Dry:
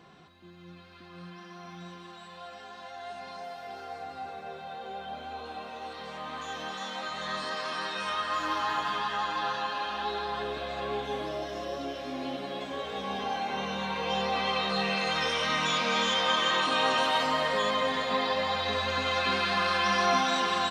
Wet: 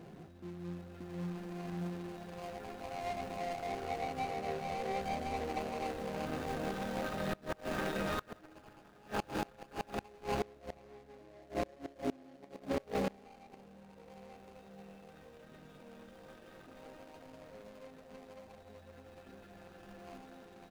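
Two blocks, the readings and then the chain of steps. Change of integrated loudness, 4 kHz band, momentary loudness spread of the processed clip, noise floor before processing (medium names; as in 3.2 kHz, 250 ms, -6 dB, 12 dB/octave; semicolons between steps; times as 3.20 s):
-10.5 dB, -21.5 dB, 18 LU, -49 dBFS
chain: median filter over 41 samples; inverted gate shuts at -31 dBFS, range -26 dB; trim +7 dB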